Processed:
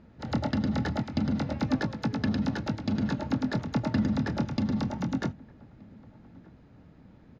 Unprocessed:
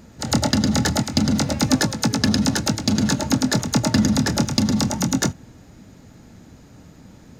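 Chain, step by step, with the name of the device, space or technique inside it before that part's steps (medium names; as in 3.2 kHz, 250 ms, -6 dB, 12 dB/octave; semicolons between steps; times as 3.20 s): shout across a valley (distance through air 300 m; echo from a far wall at 210 m, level -24 dB); trim -8 dB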